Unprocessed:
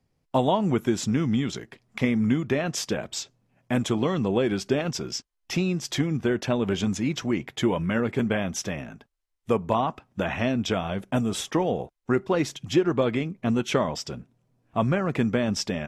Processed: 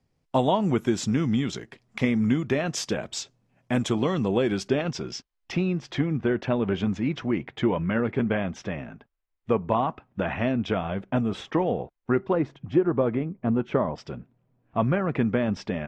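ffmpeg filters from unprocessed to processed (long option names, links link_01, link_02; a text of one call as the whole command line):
ffmpeg -i in.wav -af "asetnsamples=nb_out_samples=441:pad=0,asendcmd='4.68 lowpass f 4700;5.52 lowpass f 2600;12.33 lowpass f 1300;13.98 lowpass f 2500',lowpass=9100" out.wav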